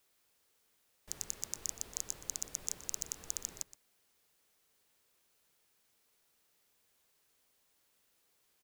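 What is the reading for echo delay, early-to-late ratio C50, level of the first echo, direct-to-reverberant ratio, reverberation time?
121 ms, no reverb, -16.5 dB, no reverb, no reverb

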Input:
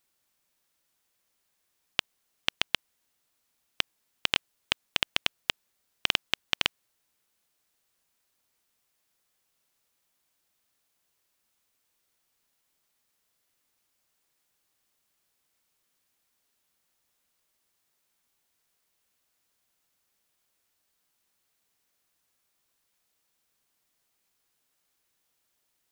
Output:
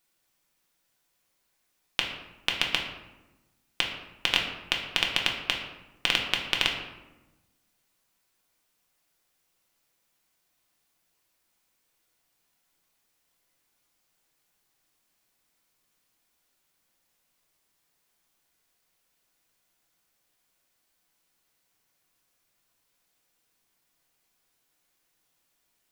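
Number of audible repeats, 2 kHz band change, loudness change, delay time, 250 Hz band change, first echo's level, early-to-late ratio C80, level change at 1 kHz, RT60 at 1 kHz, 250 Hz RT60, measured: no echo, +3.5 dB, +2.5 dB, no echo, +4.5 dB, no echo, 7.5 dB, +3.0 dB, 1.0 s, 1.4 s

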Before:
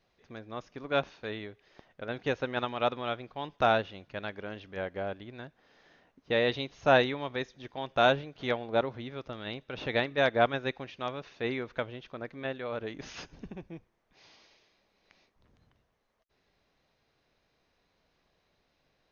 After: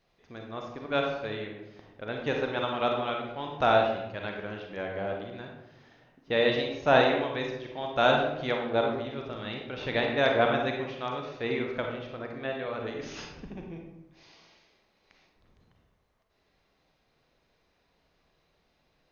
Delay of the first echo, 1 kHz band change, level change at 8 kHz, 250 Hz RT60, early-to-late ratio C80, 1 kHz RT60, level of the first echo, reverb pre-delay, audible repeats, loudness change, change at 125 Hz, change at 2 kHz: no echo, +2.5 dB, no reading, 1.2 s, 6.0 dB, 0.85 s, no echo, 34 ms, no echo, +2.5 dB, +2.0 dB, +2.0 dB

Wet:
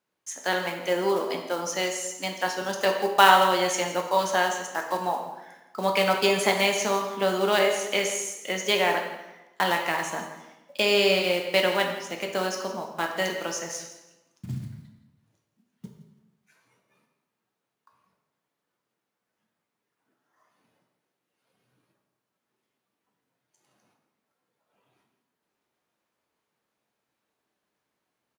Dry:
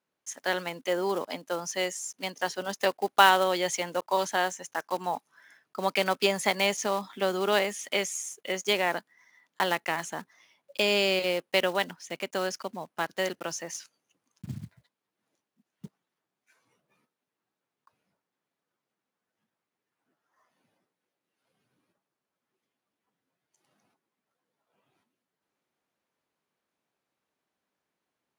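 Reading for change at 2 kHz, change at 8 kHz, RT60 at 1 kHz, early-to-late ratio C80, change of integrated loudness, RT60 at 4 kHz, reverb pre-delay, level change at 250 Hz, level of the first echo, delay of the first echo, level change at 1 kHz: +3.5 dB, +3.5 dB, 1.0 s, 7.5 dB, +3.5 dB, 0.85 s, 5 ms, +3.5 dB, -15.5 dB, 167 ms, +4.0 dB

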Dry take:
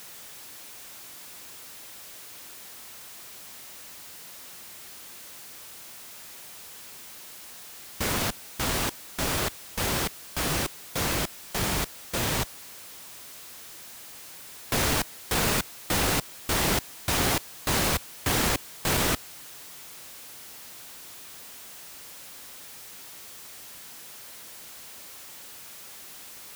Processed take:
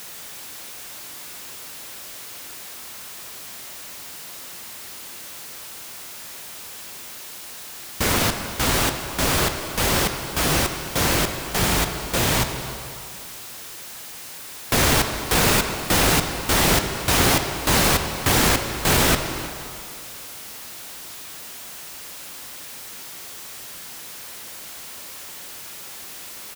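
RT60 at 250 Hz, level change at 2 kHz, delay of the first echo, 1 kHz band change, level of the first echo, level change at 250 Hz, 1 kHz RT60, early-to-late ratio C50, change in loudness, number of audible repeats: 2.4 s, +7.5 dB, 314 ms, +7.5 dB, -18.0 dB, +7.5 dB, 2.7 s, 6.5 dB, +6.5 dB, 1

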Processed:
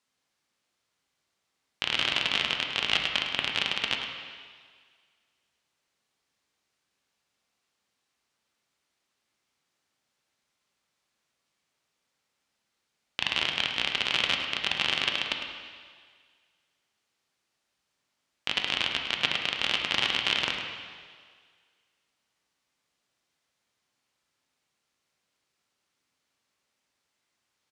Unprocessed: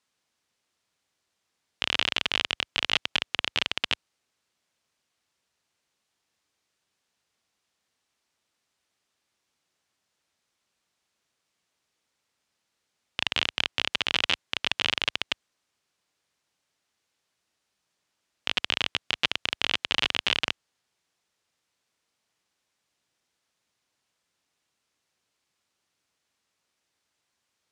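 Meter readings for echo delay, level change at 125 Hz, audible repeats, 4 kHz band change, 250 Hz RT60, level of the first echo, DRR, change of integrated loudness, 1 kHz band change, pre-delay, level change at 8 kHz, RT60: 105 ms, 0.0 dB, 1, 0.0 dB, 1.6 s, -10.0 dB, 1.5 dB, 0.0 dB, +0.5 dB, 3 ms, -1.5 dB, 1.8 s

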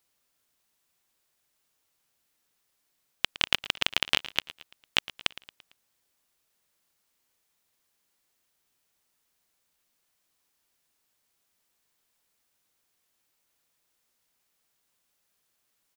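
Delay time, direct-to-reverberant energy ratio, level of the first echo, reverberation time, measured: 113 ms, no reverb, -17.0 dB, no reverb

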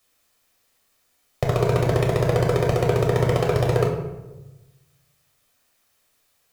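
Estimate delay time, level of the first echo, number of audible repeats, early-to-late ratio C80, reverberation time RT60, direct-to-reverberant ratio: no echo, no echo, no echo, 7.5 dB, 1.1 s, -1.0 dB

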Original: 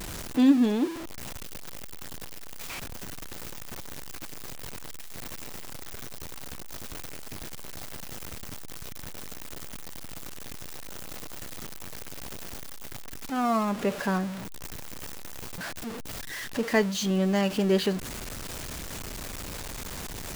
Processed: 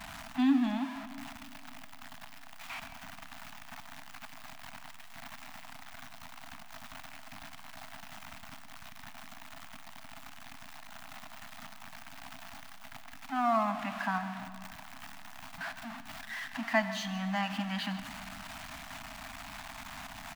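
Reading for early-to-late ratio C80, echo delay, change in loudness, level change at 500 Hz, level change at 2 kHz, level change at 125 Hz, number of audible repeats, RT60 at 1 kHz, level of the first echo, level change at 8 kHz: 11.0 dB, 154 ms, -5.0 dB, -10.0 dB, -1.5 dB, -10.0 dB, 1, 2.8 s, -16.0 dB, -12.0 dB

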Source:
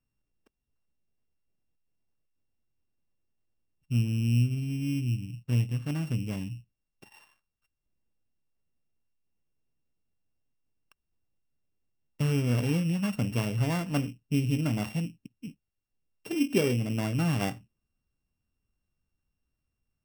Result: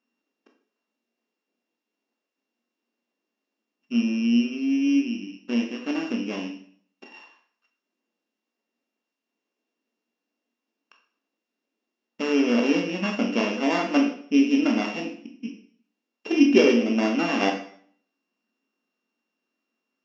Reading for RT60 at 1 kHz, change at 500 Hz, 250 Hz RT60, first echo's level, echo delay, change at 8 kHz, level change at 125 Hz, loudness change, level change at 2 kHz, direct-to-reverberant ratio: 0.55 s, +10.0 dB, 0.55 s, no echo, no echo, +1.0 dB, -15.5 dB, +6.0 dB, +9.5 dB, 2.0 dB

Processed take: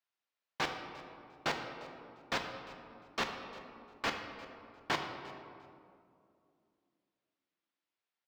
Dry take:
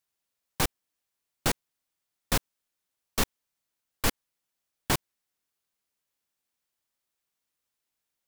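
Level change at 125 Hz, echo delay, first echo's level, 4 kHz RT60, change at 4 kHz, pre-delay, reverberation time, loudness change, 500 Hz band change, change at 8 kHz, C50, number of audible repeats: -14.0 dB, 350 ms, -19.5 dB, 1.4 s, -5.5 dB, 3 ms, 2.5 s, -9.0 dB, -4.5 dB, -17.0 dB, 5.5 dB, 1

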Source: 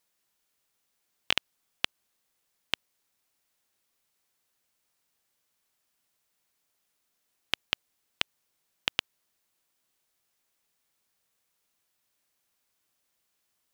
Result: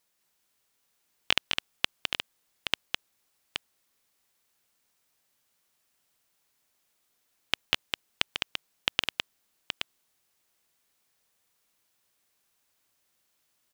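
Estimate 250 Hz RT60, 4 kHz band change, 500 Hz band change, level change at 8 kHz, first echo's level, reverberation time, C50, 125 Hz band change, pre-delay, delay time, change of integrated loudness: no reverb, +3.5 dB, +3.5 dB, +3.5 dB, -4.5 dB, no reverb, no reverb, +3.5 dB, no reverb, 208 ms, +1.0 dB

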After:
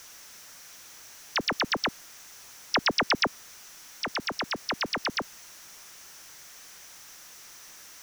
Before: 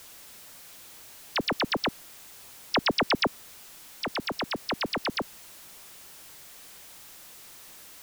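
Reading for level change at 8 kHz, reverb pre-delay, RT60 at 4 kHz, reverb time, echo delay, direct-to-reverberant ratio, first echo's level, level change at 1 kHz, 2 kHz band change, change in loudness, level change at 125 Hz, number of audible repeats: +4.0 dB, no reverb, no reverb, no reverb, no echo, no reverb, no echo, +0.5 dB, +2.0 dB, +0.5 dB, -3.5 dB, no echo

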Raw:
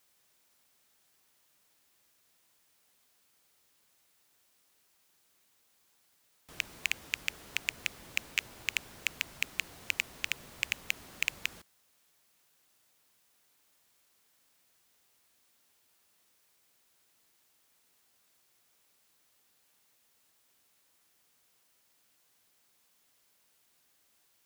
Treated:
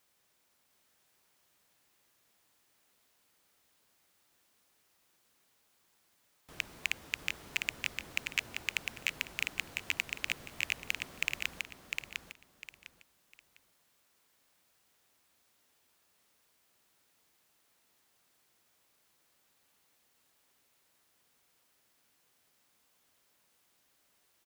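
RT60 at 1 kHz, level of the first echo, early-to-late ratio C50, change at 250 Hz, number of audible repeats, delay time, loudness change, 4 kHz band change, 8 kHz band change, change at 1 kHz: no reverb, -4.0 dB, no reverb, +1.5 dB, 3, 703 ms, -1.5 dB, -1.0 dB, -2.5 dB, +1.0 dB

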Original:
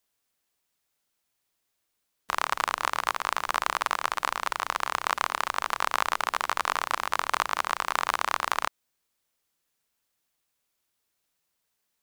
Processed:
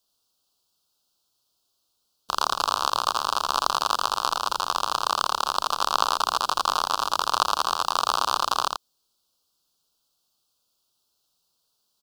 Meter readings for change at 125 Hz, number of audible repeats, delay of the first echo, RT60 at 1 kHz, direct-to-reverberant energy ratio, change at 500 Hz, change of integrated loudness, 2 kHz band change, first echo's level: no reading, 1, 83 ms, no reverb, no reverb, +3.5 dB, +4.0 dB, -4.5 dB, -3.0 dB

